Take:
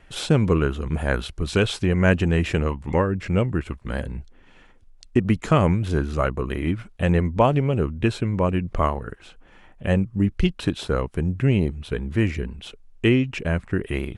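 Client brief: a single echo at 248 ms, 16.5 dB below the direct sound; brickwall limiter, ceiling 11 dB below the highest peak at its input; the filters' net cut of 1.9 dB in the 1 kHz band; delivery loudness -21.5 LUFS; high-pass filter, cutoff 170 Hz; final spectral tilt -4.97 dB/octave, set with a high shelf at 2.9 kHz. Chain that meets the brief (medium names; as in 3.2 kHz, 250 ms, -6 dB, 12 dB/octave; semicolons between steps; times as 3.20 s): high-pass 170 Hz; peaking EQ 1 kHz -3 dB; treble shelf 2.9 kHz +4.5 dB; peak limiter -14 dBFS; delay 248 ms -16.5 dB; trim +6.5 dB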